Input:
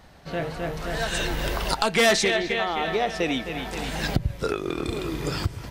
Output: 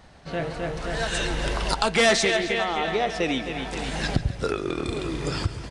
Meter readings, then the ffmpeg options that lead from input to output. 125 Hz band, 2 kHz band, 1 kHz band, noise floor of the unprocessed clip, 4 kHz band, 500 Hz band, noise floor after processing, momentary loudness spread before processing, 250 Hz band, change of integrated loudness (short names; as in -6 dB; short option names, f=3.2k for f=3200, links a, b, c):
+0.5 dB, 0.0 dB, 0.0 dB, -42 dBFS, 0.0 dB, 0.0 dB, -40 dBFS, 11 LU, 0.0 dB, 0.0 dB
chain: -filter_complex "[0:a]asplit=2[a][b];[b]aecho=0:1:138|276|414|552|690|828:0.188|0.111|0.0656|0.0387|0.0228|0.0135[c];[a][c]amix=inputs=2:normalize=0,aresample=22050,aresample=44100"